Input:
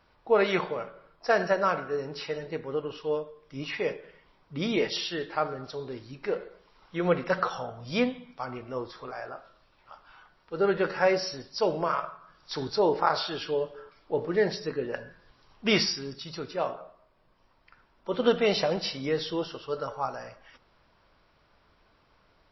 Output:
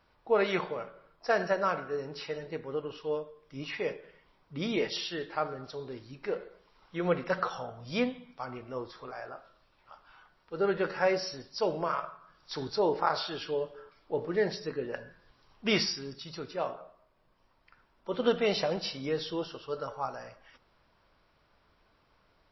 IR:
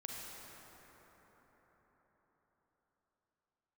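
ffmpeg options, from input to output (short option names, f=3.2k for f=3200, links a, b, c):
-filter_complex "[0:a]asettb=1/sr,asplit=3[a][b][c];[a]atrim=end=18.794[d];[b]atrim=start=18.79:end=19.81,asetpts=PTS-STARTPTS,afade=t=in:d=0.004:c=qsin,afade=t=out:st=1.016:d=0.004:c=qsin,bandreject=f=2k:w=12[e];[c]atrim=start=19.806[f];[d][e]acrossfade=d=0.004:c1=hsin:c2=qsin[g];[g][f]acrossfade=d=0.004:c1=qsin:c2=hsin,volume=-3.5dB"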